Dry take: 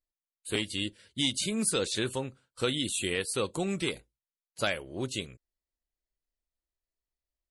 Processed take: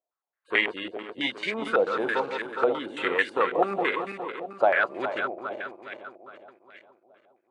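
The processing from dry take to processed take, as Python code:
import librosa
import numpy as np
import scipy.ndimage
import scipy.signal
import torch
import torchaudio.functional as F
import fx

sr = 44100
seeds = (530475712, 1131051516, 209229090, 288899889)

y = fx.reverse_delay_fb(x, sr, ms=206, feedback_pct=70, wet_db=-6.0)
y = scipy.signal.sosfilt(scipy.signal.butter(2, 480.0, 'highpass', fs=sr, output='sos'), y)
y = fx.filter_held_lowpass(y, sr, hz=9.1, low_hz=700.0, high_hz=1900.0)
y = y * 10.0 ** (6.5 / 20.0)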